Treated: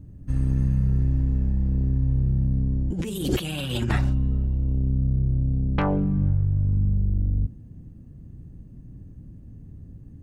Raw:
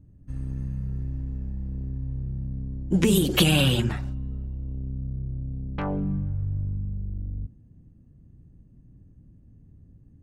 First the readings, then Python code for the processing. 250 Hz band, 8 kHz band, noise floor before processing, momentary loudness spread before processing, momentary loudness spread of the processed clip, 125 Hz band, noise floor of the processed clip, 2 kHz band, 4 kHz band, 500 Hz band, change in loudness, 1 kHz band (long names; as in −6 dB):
0.0 dB, −9.0 dB, −54 dBFS, 14 LU, 7 LU, +5.5 dB, −45 dBFS, −5.0 dB, −9.0 dB, −3.0 dB, +3.0 dB, +2.0 dB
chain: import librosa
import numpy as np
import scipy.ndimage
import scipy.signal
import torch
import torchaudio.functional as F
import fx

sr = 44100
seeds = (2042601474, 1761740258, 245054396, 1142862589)

y = fx.over_compress(x, sr, threshold_db=-29.0, ratio=-1.0)
y = y * librosa.db_to_amplitude(7.0)